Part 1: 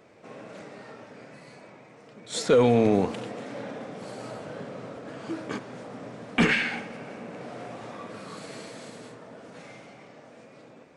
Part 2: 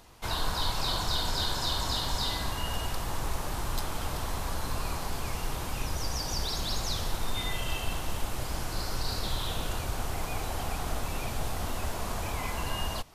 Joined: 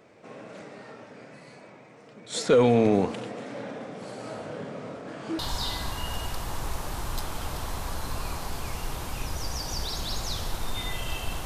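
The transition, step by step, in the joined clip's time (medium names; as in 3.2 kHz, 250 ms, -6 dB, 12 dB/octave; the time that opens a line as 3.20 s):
part 1
4.24–5.39 s: doubling 28 ms -4.5 dB
5.39 s: go over to part 2 from 1.99 s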